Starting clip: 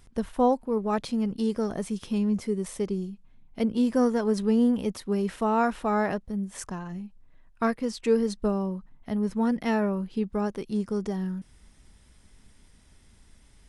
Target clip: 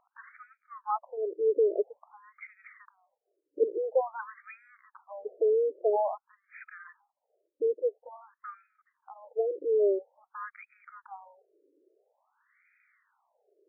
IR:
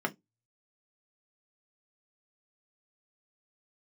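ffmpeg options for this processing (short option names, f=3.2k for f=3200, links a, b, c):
-af "equalizer=f=160:t=o:w=0.67:g=12,equalizer=f=400:t=o:w=0.67:g=8,equalizer=f=2.5k:t=o:w=0.67:g=8,afftfilt=real='re*between(b*sr/1024,410*pow(1800/410,0.5+0.5*sin(2*PI*0.49*pts/sr))/1.41,410*pow(1800/410,0.5+0.5*sin(2*PI*0.49*pts/sr))*1.41)':imag='im*between(b*sr/1024,410*pow(1800/410,0.5+0.5*sin(2*PI*0.49*pts/sr))/1.41,410*pow(1800/410,0.5+0.5*sin(2*PI*0.49*pts/sr))*1.41)':win_size=1024:overlap=0.75"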